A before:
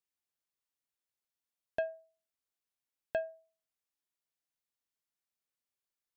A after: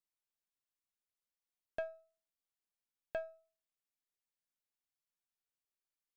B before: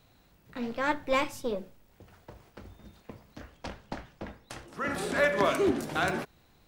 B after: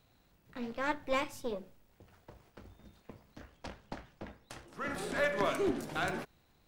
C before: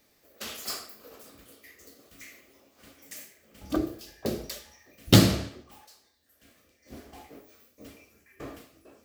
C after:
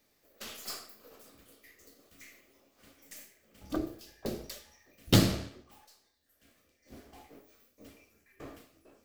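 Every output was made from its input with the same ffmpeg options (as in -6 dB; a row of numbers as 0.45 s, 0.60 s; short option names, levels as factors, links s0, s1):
-af "aeval=exprs='if(lt(val(0),0),0.708*val(0),val(0))':c=same,volume=0.596"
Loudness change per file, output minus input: -6.0 LU, -5.5 LU, -6.0 LU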